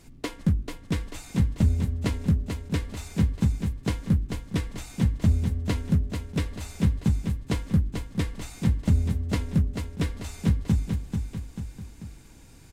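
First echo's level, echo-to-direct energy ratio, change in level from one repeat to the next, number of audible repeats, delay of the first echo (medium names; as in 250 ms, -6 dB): -6.0 dB, -5.0 dB, -6.0 dB, 3, 440 ms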